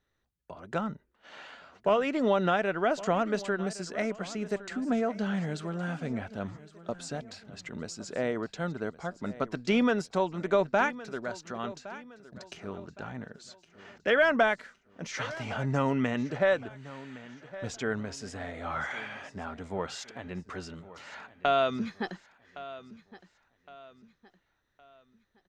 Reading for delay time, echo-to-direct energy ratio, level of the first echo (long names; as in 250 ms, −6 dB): 1,114 ms, −16.5 dB, −17.0 dB